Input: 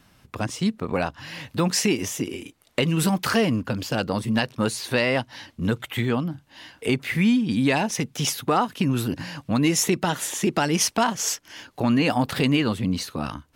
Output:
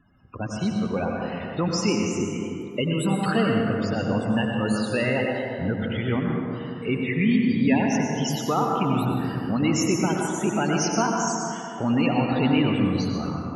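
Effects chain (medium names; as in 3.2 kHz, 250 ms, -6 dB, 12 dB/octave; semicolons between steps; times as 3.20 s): loudest bins only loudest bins 32; plate-style reverb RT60 2.7 s, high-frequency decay 0.4×, pre-delay 80 ms, DRR -0.5 dB; trim -3 dB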